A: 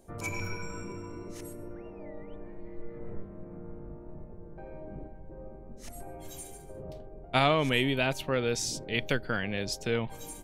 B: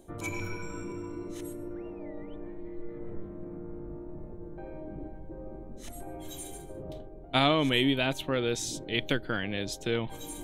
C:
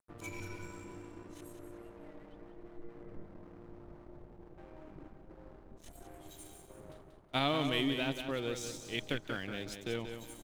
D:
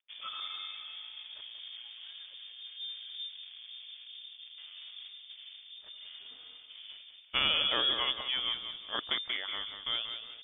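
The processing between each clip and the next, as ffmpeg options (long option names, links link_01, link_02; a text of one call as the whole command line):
ffmpeg -i in.wav -af "superequalizer=6b=2:13b=1.78:14b=0.631,areverse,acompressor=mode=upward:threshold=-34dB:ratio=2.5,areverse,volume=-1dB" out.wav
ffmpeg -i in.wav -af "aeval=exprs='sgn(val(0))*max(abs(val(0))-0.00531,0)':channel_layout=same,aecho=1:1:185|370|555|740:0.398|0.131|0.0434|0.0143,volume=-7dB" out.wav
ffmpeg -i in.wav -af "lowpass=frequency=3100:width_type=q:width=0.5098,lowpass=frequency=3100:width_type=q:width=0.6013,lowpass=frequency=3100:width_type=q:width=0.9,lowpass=frequency=3100:width_type=q:width=2.563,afreqshift=-3600,volume=3dB" out.wav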